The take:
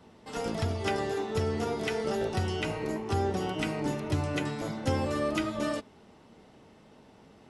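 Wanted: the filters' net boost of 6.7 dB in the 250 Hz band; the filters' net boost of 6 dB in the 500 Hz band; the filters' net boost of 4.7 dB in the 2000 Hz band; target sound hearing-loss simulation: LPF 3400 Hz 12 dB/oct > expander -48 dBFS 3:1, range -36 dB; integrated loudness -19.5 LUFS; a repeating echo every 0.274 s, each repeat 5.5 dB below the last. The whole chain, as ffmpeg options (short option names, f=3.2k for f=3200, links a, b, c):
-af "lowpass=3.4k,equalizer=f=250:t=o:g=7,equalizer=f=500:t=o:g=5,equalizer=f=2k:t=o:g=6,aecho=1:1:274|548|822|1096|1370|1644|1918:0.531|0.281|0.149|0.079|0.0419|0.0222|0.0118,agate=range=-36dB:threshold=-48dB:ratio=3,volume=6dB"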